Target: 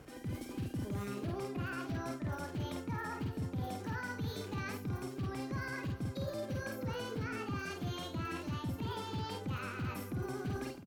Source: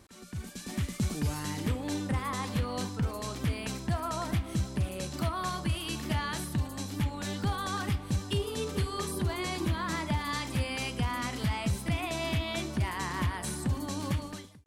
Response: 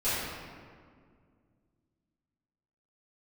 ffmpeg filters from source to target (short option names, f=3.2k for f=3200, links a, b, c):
-filter_complex "[0:a]asetrate=59535,aresample=44100,asplit=2[a][b];[b]adelay=49,volume=-4.5dB[c];[a][c]amix=inputs=2:normalize=0,areverse,acompressor=threshold=-40dB:ratio=6,areverse,highshelf=f=3k:g=-10.5,volume=4dB"